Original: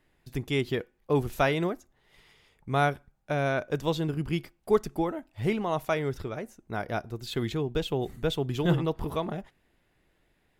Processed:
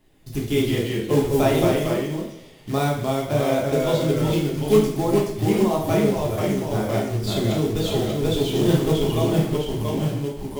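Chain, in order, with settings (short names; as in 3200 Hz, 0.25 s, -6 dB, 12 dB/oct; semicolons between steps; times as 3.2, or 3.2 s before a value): bell 1600 Hz -9.5 dB 1.2 oct; in parallel at 0 dB: compressor 16:1, threshold -36 dBFS, peak gain reduction 19 dB; on the sum: echoes that change speed 0.139 s, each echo -1 st, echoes 2; short-mantissa float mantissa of 2-bit; two-slope reverb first 0.63 s, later 3.4 s, from -28 dB, DRR -3 dB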